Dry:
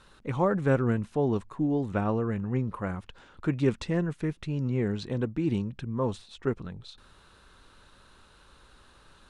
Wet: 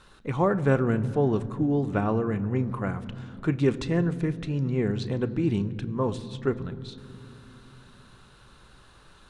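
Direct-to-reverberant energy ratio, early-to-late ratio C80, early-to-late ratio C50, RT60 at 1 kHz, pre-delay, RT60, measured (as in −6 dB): 11.0 dB, 17.0 dB, 16.5 dB, 2.6 s, 3 ms, 2.9 s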